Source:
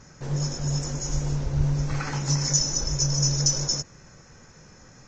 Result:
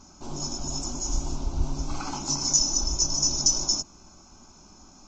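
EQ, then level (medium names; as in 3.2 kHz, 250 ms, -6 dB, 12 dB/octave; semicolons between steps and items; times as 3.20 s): static phaser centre 490 Hz, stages 6; +2.5 dB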